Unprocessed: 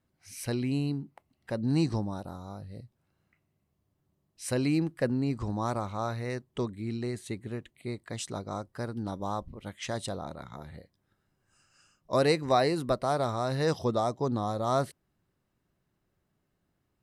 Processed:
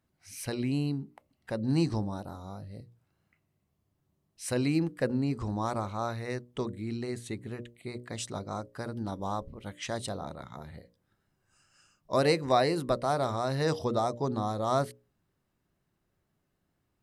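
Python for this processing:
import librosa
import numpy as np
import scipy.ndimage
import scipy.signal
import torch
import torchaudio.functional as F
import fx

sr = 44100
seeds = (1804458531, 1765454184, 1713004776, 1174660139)

y = fx.hum_notches(x, sr, base_hz=60, count=10)
y = fx.wow_flutter(y, sr, seeds[0], rate_hz=2.1, depth_cents=28.0)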